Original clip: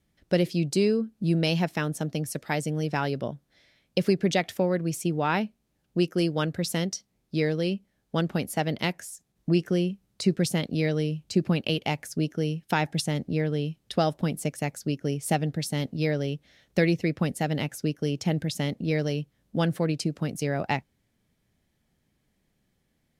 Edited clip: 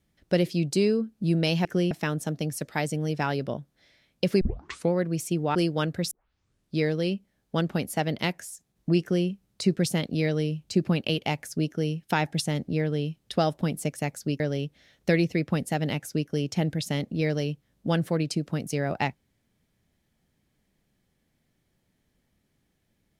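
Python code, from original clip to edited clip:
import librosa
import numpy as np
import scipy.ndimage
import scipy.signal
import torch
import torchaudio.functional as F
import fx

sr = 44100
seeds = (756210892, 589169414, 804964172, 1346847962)

y = fx.edit(x, sr, fx.tape_start(start_s=4.15, length_s=0.51),
    fx.cut(start_s=5.29, length_s=0.86),
    fx.tape_start(start_s=6.71, length_s=0.64),
    fx.duplicate(start_s=9.61, length_s=0.26, to_s=1.65),
    fx.cut(start_s=15.0, length_s=1.09), tone=tone)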